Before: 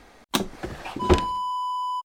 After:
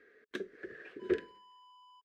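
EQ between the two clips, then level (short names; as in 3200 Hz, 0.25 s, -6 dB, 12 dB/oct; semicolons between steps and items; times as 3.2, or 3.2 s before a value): dynamic EQ 1300 Hz, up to -5 dB, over -39 dBFS, Q 0.76; double band-pass 850 Hz, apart 2 oct; -1.5 dB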